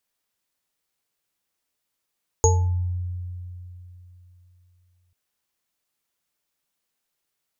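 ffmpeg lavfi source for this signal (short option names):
-f lavfi -i "aevalsrc='0.178*pow(10,-3*t/3.29)*sin(2*PI*89.4*t)+0.188*pow(10,-3*t/0.35)*sin(2*PI*453*t)+0.1*pow(10,-3*t/0.56)*sin(2*PI*868*t)+0.178*pow(10,-3*t/0.23)*sin(2*PI*6660*t)':d=2.69:s=44100"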